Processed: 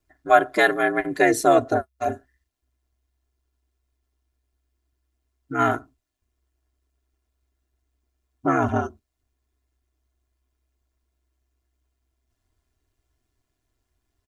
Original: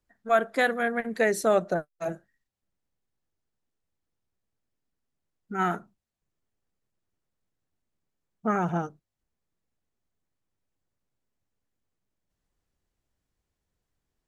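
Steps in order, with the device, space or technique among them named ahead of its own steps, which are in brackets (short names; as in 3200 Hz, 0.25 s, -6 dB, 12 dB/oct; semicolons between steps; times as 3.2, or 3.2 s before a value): ring-modulated robot voice (ring modulator 64 Hz; comb 2.9 ms, depth 70%); gain +7 dB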